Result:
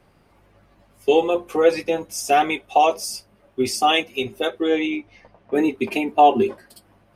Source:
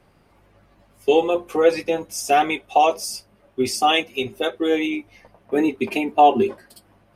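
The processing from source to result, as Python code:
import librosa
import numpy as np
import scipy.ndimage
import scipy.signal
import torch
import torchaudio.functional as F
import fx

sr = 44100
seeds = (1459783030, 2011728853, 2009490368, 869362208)

y = fx.lowpass(x, sr, hz=5900.0, slope=12, at=(4.63, 5.55))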